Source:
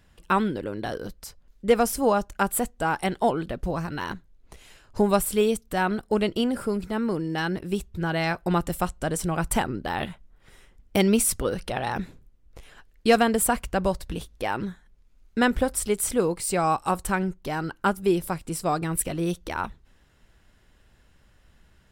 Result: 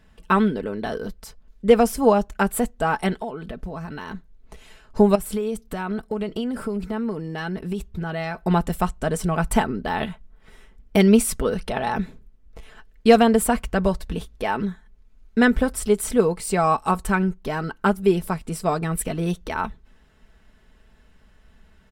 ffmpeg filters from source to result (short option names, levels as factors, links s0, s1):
-filter_complex "[0:a]asettb=1/sr,asplit=3[s0][s1][s2];[s0]atrim=end=3.214[s3];[s1]atrim=start=3.21:end=4.14,asetpts=PTS-STARTPTS,afade=t=in:d=0.004:c=qsin,afade=t=out:st=0.926:d=0.004:c=qsin,acompressor=threshold=0.0251:ratio=6:attack=3.2:release=140:knee=1:detection=peak[s4];[s2]atrim=start=4.136[s5];[s3][s4]acrossfade=d=0.004:c1=hsin:c2=qsin[s6];[s6][s5]acrossfade=d=0.004:c1=qsin:c2=hsin,asettb=1/sr,asplit=3[s7][s8][s9];[s7]atrim=end=5.154[s10];[s8]atrim=start=5.15:end=8.43,asetpts=PTS-STARTPTS,afade=t=in:d=0.004:c=qsin,afade=t=out:st=3.276:d=0.004:c=qsin,acompressor=threshold=0.0447:ratio=12:attack=3.2:release=140:knee=1:detection=peak[s11];[s9]atrim=start=8.426[s12];[s10][s11]acrossfade=d=0.004:c1=hsin:c2=qsin[s13];[s13][s12]acrossfade=d=0.004:c1=qsin:c2=hsin,highshelf=f=3900:g=-7,aecho=1:1:4.6:0.51,volume=1.41"